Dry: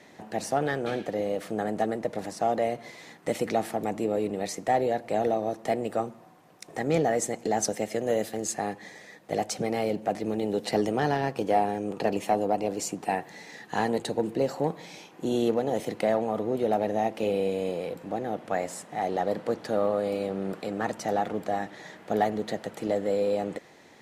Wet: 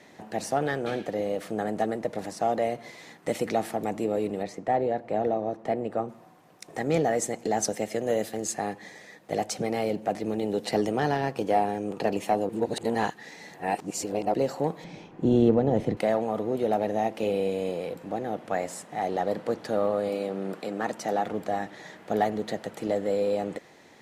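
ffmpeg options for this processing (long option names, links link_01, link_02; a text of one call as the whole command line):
ffmpeg -i in.wav -filter_complex "[0:a]asplit=3[link_01][link_02][link_03];[link_01]afade=type=out:start_time=4.42:duration=0.02[link_04];[link_02]lowpass=frequency=1500:poles=1,afade=type=in:start_time=4.42:duration=0.02,afade=type=out:start_time=6.08:duration=0.02[link_05];[link_03]afade=type=in:start_time=6.08:duration=0.02[link_06];[link_04][link_05][link_06]amix=inputs=3:normalize=0,asettb=1/sr,asplit=3[link_07][link_08][link_09];[link_07]atrim=end=14.844[link_10];[link_08]atrim=start=14.84:end=15.97,asetpts=PTS-STARTPTS,afade=type=in:duration=0.004:curve=qsin,afade=type=out:start_time=1.126:duration=0.004:curve=qsin,aemphasis=mode=reproduction:type=riaa[link_11];[link_09]atrim=start=15.966[link_12];[link_10][link_11]acrossfade=duration=0.004:curve1=hsin:curve2=qsin[link_13];[link_13][link_12]acrossfade=duration=0.004:curve1=qsin:curve2=hsin,asettb=1/sr,asplit=3[link_14][link_15][link_16];[link_14]atrim=end=20.094[link_17];[link_15]atrim=start=20.09:end=21.26,asetpts=PTS-STARTPTS,afade=type=in:duration=0.004:curve=qsin,afade=type=out:start_time=1.166:duration=0.004:curve=qsin,highpass=160[link_18];[link_16]atrim=start=21.256[link_19];[link_17][link_18]acrossfade=duration=0.004:curve1=hsin:curve2=qsin[link_20];[link_20][link_19]acrossfade=duration=0.004:curve1=qsin:curve2=hsin,asplit=3[link_21][link_22][link_23];[link_21]atrim=end=12.492[link_24];[link_22]atrim=start=12.488:end=14.342,asetpts=PTS-STARTPTS,areverse[link_25];[link_23]atrim=start=14.338[link_26];[link_24][link_25]acrossfade=duration=0.004:curve1=hsin:curve2=hsin[link_27];[link_27][link_26]acrossfade=duration=0.004:curve1=hsin:curve2=hsin" out.wav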